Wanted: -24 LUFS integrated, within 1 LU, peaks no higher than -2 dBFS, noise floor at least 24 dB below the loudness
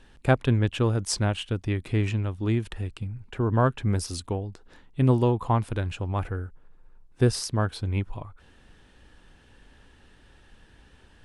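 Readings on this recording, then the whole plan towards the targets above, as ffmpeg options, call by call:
loudness -26.5 LUFS; peak -7.5 dBFS; loudness target -24.0 LUFS
-> -af "volume=2.5dB"

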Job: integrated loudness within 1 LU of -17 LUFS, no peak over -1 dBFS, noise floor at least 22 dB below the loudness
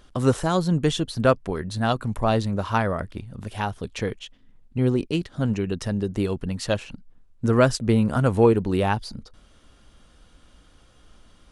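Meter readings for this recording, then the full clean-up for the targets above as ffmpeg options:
loudness -24.0 LUFS; peak -5.0 dBFS; loudness target -17.0 LUFS
-> -af "volume=7dB,alimiter=limit=-1dB:level=0:latency=1"

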